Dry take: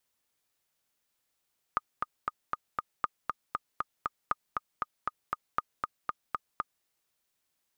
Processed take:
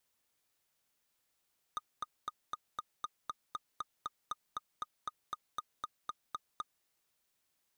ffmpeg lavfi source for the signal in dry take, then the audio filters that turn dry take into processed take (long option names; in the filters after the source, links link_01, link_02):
-f lavfi -i "aevalsrc='pow(10,(-13.5-3.5*gte(mod(t,5*60/236),60/236))/20)*sin(2*PI*1230*mod(t,60/236))*exp(-6.91*mod(t,60/236)/0.03)':duration=5.08:sample_rate=44100"
-af "asoftclip=type=tanh:threshold=-31.5dB"